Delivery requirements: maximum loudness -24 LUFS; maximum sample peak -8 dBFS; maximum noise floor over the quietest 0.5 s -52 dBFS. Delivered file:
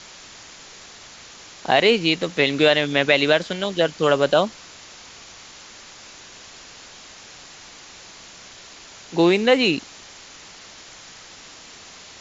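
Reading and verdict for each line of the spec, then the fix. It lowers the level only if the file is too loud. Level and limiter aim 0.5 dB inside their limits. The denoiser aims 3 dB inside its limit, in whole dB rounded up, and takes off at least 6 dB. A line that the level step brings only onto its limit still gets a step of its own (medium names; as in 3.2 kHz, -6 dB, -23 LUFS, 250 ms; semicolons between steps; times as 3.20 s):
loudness -19.0 LUFS: fail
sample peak -2.5 dBFS: fail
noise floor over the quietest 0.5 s -43 dBFS: fail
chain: noise reduction 7 dB, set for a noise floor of -43 dBFS; trim -5.5 dB; peak limiter -8.5 dBFS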